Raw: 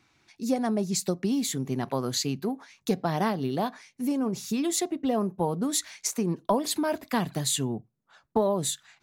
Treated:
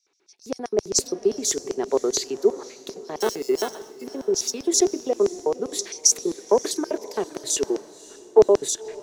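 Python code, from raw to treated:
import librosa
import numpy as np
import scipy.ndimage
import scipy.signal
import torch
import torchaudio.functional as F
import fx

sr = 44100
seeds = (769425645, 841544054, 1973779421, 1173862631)

p1 = fx.peak_eq(x, sr, hz=1600.0, db=11.5, octaves=0.45, at=(6.36, 6.87))
p2 = fx.steep_highpass(p1, sr, hz=250.0, slope=96, at=(7.56, 8.39))
p3 = fx.high_shelf(p2, sr, hz=7100.0, db=-9.0)
p4 = fx.over_compress(p3, sr, threshold_db=-38.0, ratio=-1.0)
p5 = p3 + (p4 * librosa.db_to_amplitude(-3.0))
p6 = fx.sample_hold(p5, sr, seeds[0], rate_hz=2400.0, jitter_pct=0, at=(3.2, 4.04))
p7 = fx.filter_lfo_highpass(p6, sr, shape='square', hz=7.6, low_hz=400.0, high_hz=5700.0, q=6.9)
p8 = p7 + fx.echo_diffused(p7, sr, ms=557, feedback_pct=44, wet_db=-14.0, dry=0)
p9 = fx.band_widen(p8, sr, depth_pct=40)
y = p9 * librosa.db_to_amplitude(-2.0)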